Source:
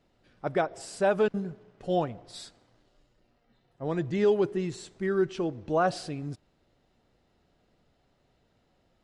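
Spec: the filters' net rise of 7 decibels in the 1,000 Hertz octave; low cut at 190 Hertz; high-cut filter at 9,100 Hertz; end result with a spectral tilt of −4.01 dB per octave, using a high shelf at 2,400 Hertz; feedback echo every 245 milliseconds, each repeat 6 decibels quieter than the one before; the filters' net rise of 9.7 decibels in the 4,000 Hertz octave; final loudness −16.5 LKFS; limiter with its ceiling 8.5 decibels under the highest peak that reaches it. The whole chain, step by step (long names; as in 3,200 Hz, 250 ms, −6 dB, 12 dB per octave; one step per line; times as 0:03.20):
high-pass filter 190 Hz
low-pass filter 9,100 Hz
parametric band 1,000 Hz +9 dB
high-shelf EQ 2,400 Hz +8.5 dB
parametric band 4,000 Hz +4 dB
brickwall limiter −15 dBFS
repeating echo 245 ms, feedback 50%, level −6 dB
level +12 dB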